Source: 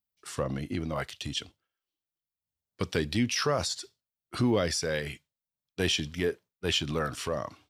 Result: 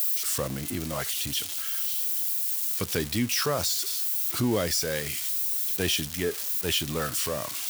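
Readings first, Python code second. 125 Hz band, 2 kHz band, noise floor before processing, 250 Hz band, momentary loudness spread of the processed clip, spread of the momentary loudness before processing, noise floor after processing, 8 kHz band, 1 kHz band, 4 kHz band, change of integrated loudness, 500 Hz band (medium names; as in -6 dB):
0.0 dB, +1.0 dB, under -85 dBFS, 0.0 dB, 4 LU, 11 LU, -35 dBFS, +9.5 dB, +0.5 dB, +3.0 dB, +4.5 dB, 0.0 dB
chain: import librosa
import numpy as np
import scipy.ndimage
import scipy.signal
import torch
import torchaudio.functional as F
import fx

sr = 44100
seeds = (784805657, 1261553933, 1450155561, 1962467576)

y = x + 0.5 * 10.0 ** (-22.5 / 20.0) * np.diff(np.sign(x), prepend=np.sign(x[:1]))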